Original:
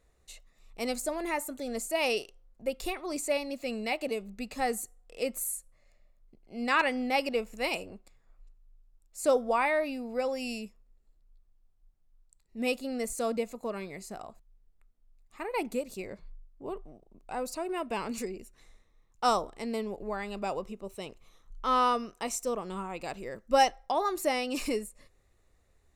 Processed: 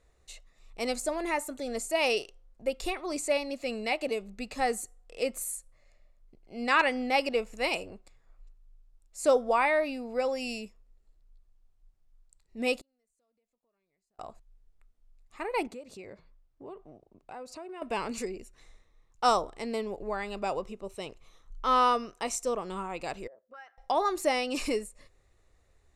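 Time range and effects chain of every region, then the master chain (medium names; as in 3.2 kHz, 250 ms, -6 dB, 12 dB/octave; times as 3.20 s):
12.81–14.19 s: compression, threshold -37 dBFS + inverted gate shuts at -42 dBFS, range -39 dB
15.67–17.82 s: high-pass 61 Hz + treble shelf 7.3 kHz -12 dB + compression 3:1, threshold -44 dBFS
23.27–23.78 s: high-pass 41 Hz + auto-wah 450–1500 Hz, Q 6.5, up, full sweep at -26.5 dBFS + compression 2.5:1, threshold -52 dBFS
whole clip: low-pass 9.5 kHz 12 dB/octave; peaking EQ 210 Hz -4 dB 0.78 oct; trim +2 dB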